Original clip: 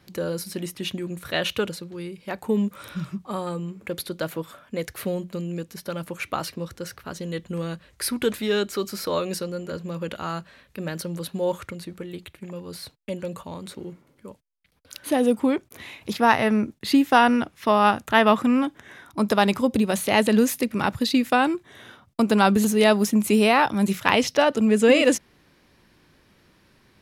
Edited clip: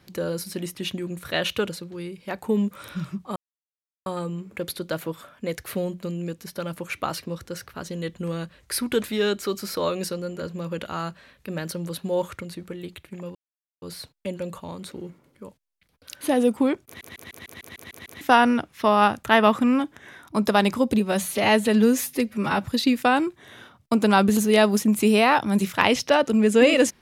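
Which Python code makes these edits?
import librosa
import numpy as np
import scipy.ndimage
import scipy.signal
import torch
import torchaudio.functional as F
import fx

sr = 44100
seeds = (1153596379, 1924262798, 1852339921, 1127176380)

y = fx.edit(x, sr, fx.insert_silence(at_s=3.36, length_s=0.7),
    fx.insert_silence(at_s=12.65, length_s=0.47),
    fx.stutter_over(start_s=15.69, slice_s=0.15, count=9),
    fx.stretch_span(start_s=19.83, length_s=1.11, factor=1.5), tone=tone)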